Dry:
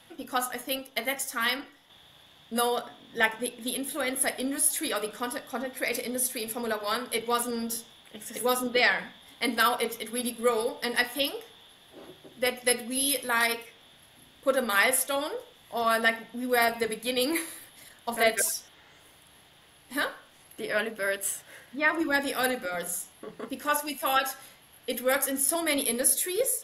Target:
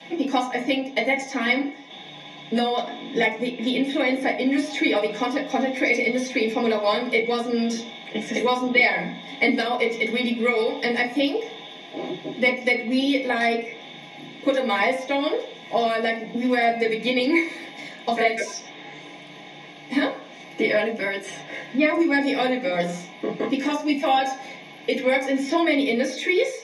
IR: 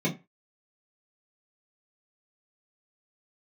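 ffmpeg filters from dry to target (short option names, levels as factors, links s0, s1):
-filter_complex "[0:a]acrossover=split=1100|4900[s0][s1][s2];[s0]acompressor=threshold=0.01:ratio=4[s3];[s1]acompressor=threshold=0.00794:ratio=4[s4];[s2]acompressor=threshold=0.00562:ratio=4[s5];[s3][s4][s5]amix=inputs=3:normalize=0,highpass=360,equalizer=f=500:t=q:w=4:g=-4,equalizer=f=810:t=q:w=4:g=7,equalizer=f=1400:t=q:w=4:g=-8,equalizer=f=2000:t=q:w=4:g=7,equalizer=f=5600:t=q:w=4:g=4,lowpass=f=7700:w=0.5412,lowpass=f=7700:w=1.3066[s6];[1:a]atrim=start_sample=2205[s7];[s6][s7]afir=irnorm=-1:irlink=0,volume=2"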